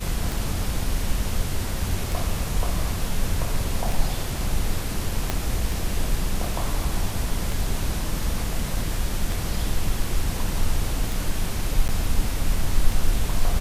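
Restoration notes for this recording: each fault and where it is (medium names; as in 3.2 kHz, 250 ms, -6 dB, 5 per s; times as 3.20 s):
tick 33 1/3 rpm
5.30 s: pop -8 dBFS
11.88–11.89 s: dropout 9.4 ms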